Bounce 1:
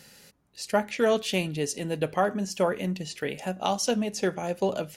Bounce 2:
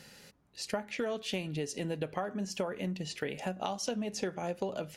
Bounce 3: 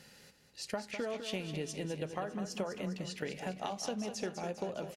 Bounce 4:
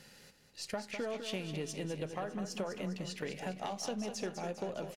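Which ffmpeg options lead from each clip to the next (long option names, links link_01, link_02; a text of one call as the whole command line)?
ffmpeg -i in.wav -af "highshelf=frequency=7900:gain=-9,acompressor=threshold=-31dB:ratio=10" out.wav
ffmpeg -i in.wav -af "aecho=1:1:202|404|606|808|1010|1212:0.355|0.185|0.0959|0.0499|0.0259|0.0135,volume=-3.5dB" out.wav
ffmpeg -i in.wav -af "aeval=exprs='if(lt(val(0),0),0.708*val(0),val(0))':channel_layout=same,aeval=exprs='(tanh(22.4*val(0)+0.2)-tanh(0.2))/22.4':channel_layout=same,volume=2dB" out.wav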